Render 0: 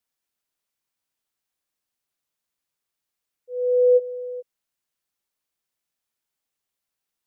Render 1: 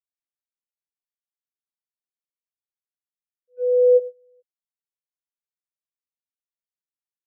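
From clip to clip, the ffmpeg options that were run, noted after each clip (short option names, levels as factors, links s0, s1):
-af "agate=range=0.0501:threshold=0.0501:ratio=16:detection=peak,volume=1.19"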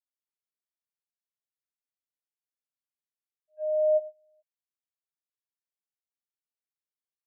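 -af "afreqshift=120,volume=0.376"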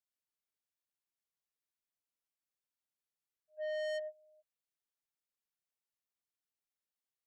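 -af "asoftclip=type=tanh:threshold=0.0188,volume=0.841"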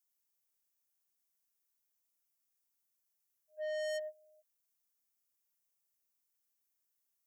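-af "aexciter=amount=2:drive=7.8:freq=5400"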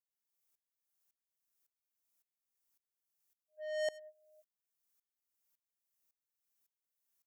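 -af "aeval=exprs='val(0)*pow(10,-23*if(lt(mod(-1.8*n/s,1),2*abs(-1.8)/1000),1-mod(-1.8*n/s,1)/(2*abs(-1.8)/1000),(mod(-1.8*n/s,1)-2*abs(-1.8)/1000)/(1-2*abs(-1.8)/1000))/20)':c=same,volume=1.78"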